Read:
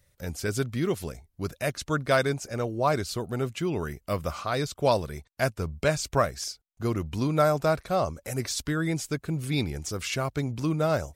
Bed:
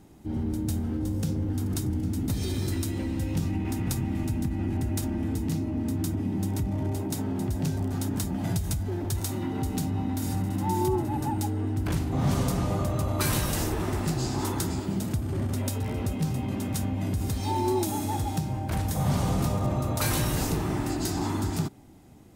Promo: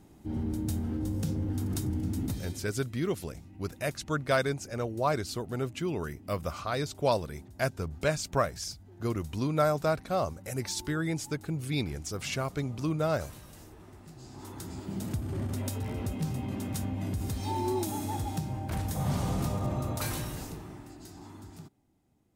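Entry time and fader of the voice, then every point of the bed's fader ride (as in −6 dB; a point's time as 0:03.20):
2.20 s, −3.5 dB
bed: 0:02.25 −3 dB
0:02.80 −22.5 dB
0:14.07 −22.5 dB
0:15.08 −4.5 dB
0:19.89 −4.5 dB
0:20.90 −19 dB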